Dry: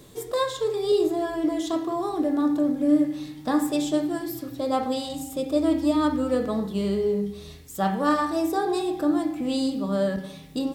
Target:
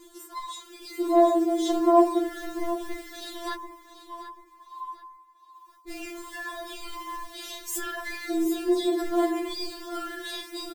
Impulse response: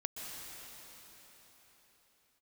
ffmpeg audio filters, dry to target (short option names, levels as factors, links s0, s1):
-filter_complex "[0:a]asplit=2[s0][s1];[s1]adelay=34,volume=0.562[s2];[s0][s2]amix=inputs=2:normalize=0,asoftclip=type=tanh:threshold=0.126,alimiter=level_in=1.78:limit=0.0631:level=0:latency=1:release=109,volume=0.562,asplit=3[s3][s4][s5];[s3]afade=t=out:st=3.54:d=0.02[s6];[s4]asuperpass=centerf=970:order=12:qfactor=4.5,afade=t=in:st=3.54:d=0.02,afade=t=out:st=5.88:d=0.02[s7];[s5]afade=t=in:st=5.88:d=0.02[s8];[s6][s7][s8]amix=inputs=3:normalize=0,aecho=1:1:739|1478|2217:0.211|0.074|0.0259,dynaudnorm=f=140:g=13:m=3.98,acrusher=bits=7:mode=log:mix=0:aa=0.000001,afftfilt=real='re*4*eq(mod(b,16),0)':imag='im*4*eq(mod(b,16),0)':win_size=2048:overlap=0.75"